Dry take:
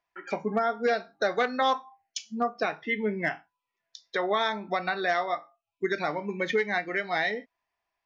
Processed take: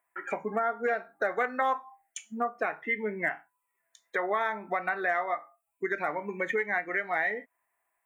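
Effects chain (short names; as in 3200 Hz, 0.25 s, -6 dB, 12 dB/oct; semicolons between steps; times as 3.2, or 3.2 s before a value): EQ curve 140 Hz 0 dB, 2000 Hz +6 dB, 5100 Hz -22 dB, 7900 Hz +13 dB; compressor 1.5:1, threshold -34 dBFS, peak gain reduction 6.5 dB; low shelf 180 Hz -8.5 dB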